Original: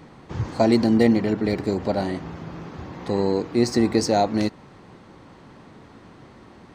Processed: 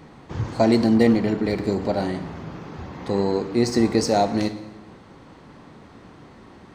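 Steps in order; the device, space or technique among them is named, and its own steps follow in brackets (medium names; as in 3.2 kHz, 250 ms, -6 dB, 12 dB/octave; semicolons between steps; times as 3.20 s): saturated reverb return (on a send at -7.5 dB: reverberation RT60 0.85 s, pre-delay 17 ms + saturation -19.5 dBFS, distortion -10 dB)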